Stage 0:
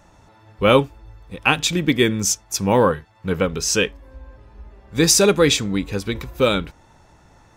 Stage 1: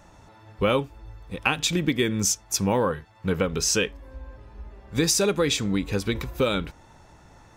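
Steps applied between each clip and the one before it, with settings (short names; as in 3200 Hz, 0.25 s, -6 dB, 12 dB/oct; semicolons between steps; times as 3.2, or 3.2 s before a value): compressor 4:1, threshold -20 dBFS, peak gain reduction 9.5 dB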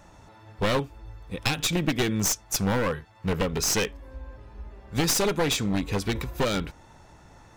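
one-sided fold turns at -21.5 dBFS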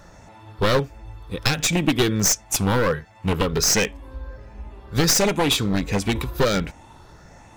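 moving spectral ripple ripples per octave 0.59, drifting +1.4 Hz, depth 6 dB; gain +4.5 dB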